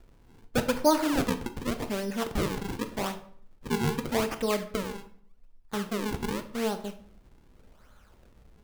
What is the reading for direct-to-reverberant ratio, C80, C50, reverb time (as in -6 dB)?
8.5 dB, 16.0 dB, 12.5 dB, 0.55 s